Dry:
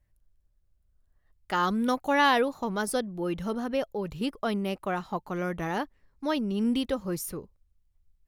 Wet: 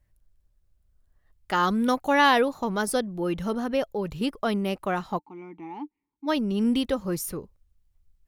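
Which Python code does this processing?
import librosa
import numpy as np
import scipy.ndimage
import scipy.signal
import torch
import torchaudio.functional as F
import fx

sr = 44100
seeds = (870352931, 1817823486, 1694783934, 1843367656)

y = fx.vowel_filter(x, sr, vowel='u', at=(5.18, 6.27), fade=0.02)
y = F.gain(torch.from_numpy(y), 3.0).numpy()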